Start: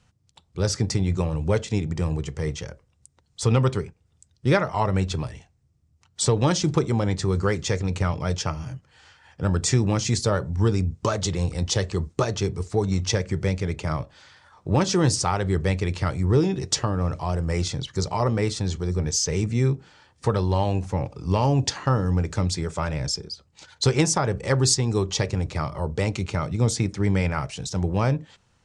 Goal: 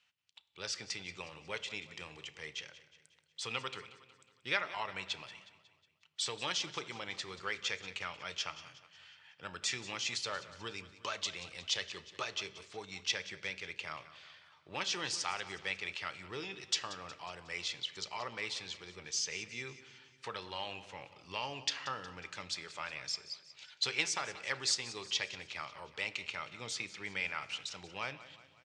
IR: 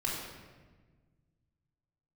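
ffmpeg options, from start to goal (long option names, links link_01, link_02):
-filter_complex "[0:a]bandpass=frequency=2800:width_type=q:width=2:csg=0,aecho=1:1:182|364|546|728|910:0.158|0.0808|0.0412|0.021|0.0107,asplit=2[link_01][link_02];[1:a]atrim=start_sample=2205,adelay=33[link_03];[link_02][link_03]afir=irnorm=-1:irlink=0,volume=-22dB[link_04];[link_01][link_04]amix=inputs=2:normalize=0"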